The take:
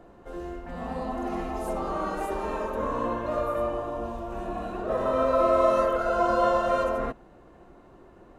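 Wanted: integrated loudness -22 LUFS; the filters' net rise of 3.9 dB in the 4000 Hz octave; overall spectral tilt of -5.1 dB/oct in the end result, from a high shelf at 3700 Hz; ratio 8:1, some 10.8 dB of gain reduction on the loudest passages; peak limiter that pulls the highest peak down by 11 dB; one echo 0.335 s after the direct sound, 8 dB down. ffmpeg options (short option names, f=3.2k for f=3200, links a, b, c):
-af "highshelf=f=3.7k:g=-4,equalizer=f=4k:t=o:g=7.5,acompressor=threshold=-29dB:ratio=8,alimiter=level_in=7.5dB:limit=-24dB:level=0:latency=1,volume=-7.5dB,aecho=1:1:335:0.398,volume=17dB"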